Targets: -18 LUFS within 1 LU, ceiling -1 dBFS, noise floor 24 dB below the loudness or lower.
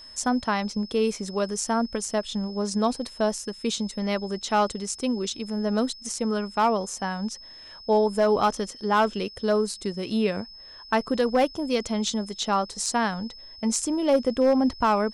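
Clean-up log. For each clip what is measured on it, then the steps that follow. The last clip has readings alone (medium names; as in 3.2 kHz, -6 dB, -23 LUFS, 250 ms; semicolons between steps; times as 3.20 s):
clipped samples 0.2%; clipping level -13.5 dBFS; steady tone 5.2 kHz; tone level -43 dBFS; loudness -26.0 LUFS; peak level -13.5 dBFS; loudness target -18.0 LUFS
-> clip repair -13.5 dBFS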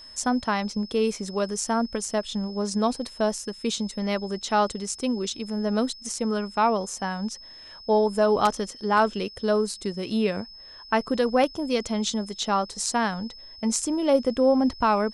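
clipped samples 0.0%; steady tone 5.2 kHz; tone level -43 dBFS
-> band-stop 5.2 kHz, Q 30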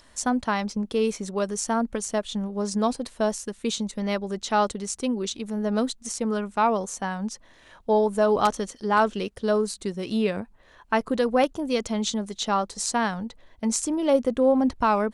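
steady tone not found; loudness -25.5 LUFS; peak level -6.0 dBFS; loudness target -18.0 LUFS
-> trim +7.5 dB; peak limiter -1 dBFS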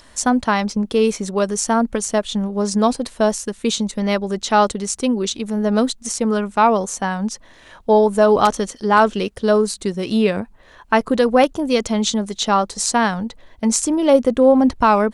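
loudness -18.0 LUFS; peak level -1.0 dBFS; noise floor -47 dBFS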